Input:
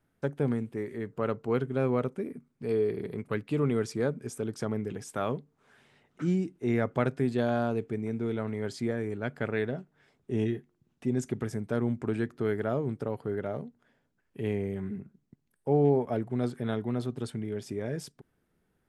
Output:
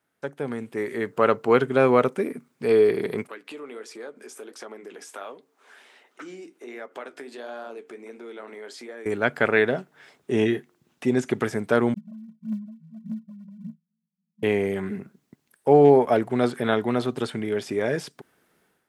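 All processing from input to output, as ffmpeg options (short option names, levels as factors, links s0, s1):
-filter_complex "[0:a]asettb=1/sr,asplit=3[s0][s1][s2];[s0]atrim=end=3.274[s3];[s1]atrim=start=3.27:end=9.06,asetpts=PTS-STARTPTS,afade=t=in:d=0.004:c=qsin,afade=t=out:st=5.786:d=0.004:c=qsin,highpass=f=270:w=0.5412,highpass=f=270:w=1.3066,acompressor=threshold=0.00501:ratio=3:attack=3.2:release=140:knee=1:detection=peak,flanger=delay=4.9:depth=9.3:regen=-56:speed=1.4:shape=sinusoidal[s4];[s2]atrim=start=9.056[s5];[s3][s4]acrossfade=d=0.004:c1=hsin:c2=qsin[s6];[s6][s5]acrossfade=d=0.004:c1=qsin:c2=hsin,asettb=1/sr,asplit=3[s7][s8][s9];[s7]atrim=end=11.944[s10];[s8]atrim=start=11.94:end=14.43,asetpts=PTS-STARTPTS,afade=t=in:d=0.004:c=qsin,afade=t=out:st=2.486:d=0.004:c=qsin,asuperpass=centerf=190:order=20:qfactor=3,acompressor=threshold=0.01:ratio=3:attack=3.2:release=140:knee=1:detection=peak,aphaser=in_gain=1:out_gain=1:delay=2.8:decay=0.69:speed=1.7:type=triangular[s11];[s9]atrim=start=14.426[s12];[s10][s11]acrossfade=d=0.004:c1=hsin:c2=qsin[s13];[s13][s12]acrossfade=d=0.004:c1=qsin:c2=hsin,acrossover=split=3500[s14][s15];[s15]acompressor=threshold=0.00141:ratio=4:attack=1:release=60[s16];[s14][s16]amix=inputs=2:normalize=0,highpass=f=680:p=1,dynaudnorm=f=490:g=3:m=3.98,volume=1.5"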